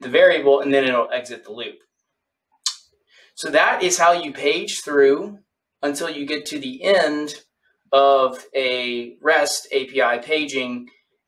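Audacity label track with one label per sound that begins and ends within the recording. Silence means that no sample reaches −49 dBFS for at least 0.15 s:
2.640000	2.850000	sound
3.120000	5.410000	sound
5.830000	7.430000	sound
7.920000	10.970000	sound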